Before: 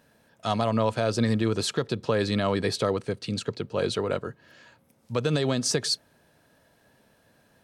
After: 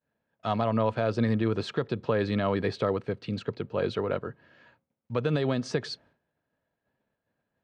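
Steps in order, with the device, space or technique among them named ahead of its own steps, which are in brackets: hearing-loss simulation (low-pass 2.7 kHz 12 dB/octave; expander -51 dBFS); trim -1.5 dB

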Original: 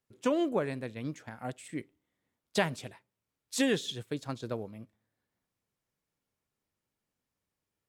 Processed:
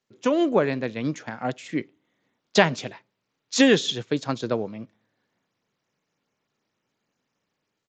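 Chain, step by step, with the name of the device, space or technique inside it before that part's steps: high-pass 92 Hz 12 dB/octave; Bluetooth headset (high-pass 130 Hz 12 dB/octave; level rider gain up to 5.5 dB; resampled via 16 kHz; trim +5.5 dB; SBC 64 kbps 16 kHz)

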